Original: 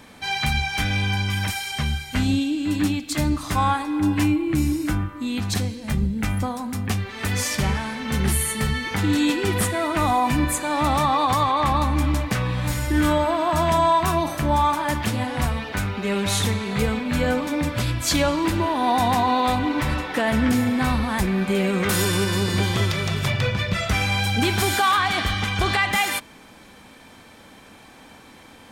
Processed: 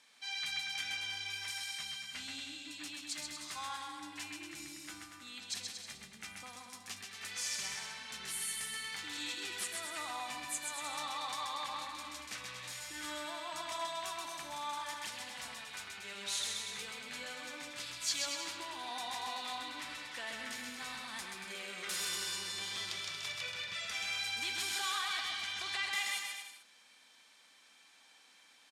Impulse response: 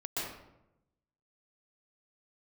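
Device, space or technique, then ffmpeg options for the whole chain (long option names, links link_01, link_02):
piezo pickup straight into a mixer: -af "lowpass=5900,aderivative,aecho=1:1:130|234|317.2|383.8|437:0.631|0.398|0.251|0.158|0.1,volume=-5.5dB"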